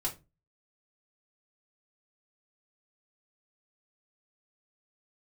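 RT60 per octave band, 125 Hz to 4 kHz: 0.40 s, 0.40 s, 0.30 s, 0.20 s, 0.20 s, 0.20 s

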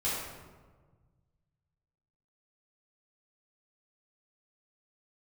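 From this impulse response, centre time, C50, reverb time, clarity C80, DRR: 86 ms, -1.0 dB, 1.4 s, 2.0 dB, -10.5 dB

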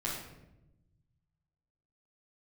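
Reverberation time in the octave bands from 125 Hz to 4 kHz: 2.2 s, 1.5 s, 1.1 s, 0.80 s, 0.75 s, 0.60 s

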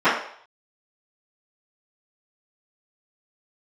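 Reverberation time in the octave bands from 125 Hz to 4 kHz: 0.35 s, 0.40 s, 0.55 s, 0.60 s, 0.55 s, 0.60 s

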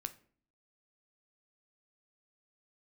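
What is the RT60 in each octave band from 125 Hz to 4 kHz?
0.65 s, 0.70 s, 0.55 s, 0.45 s, 0.40 s, 0.35 s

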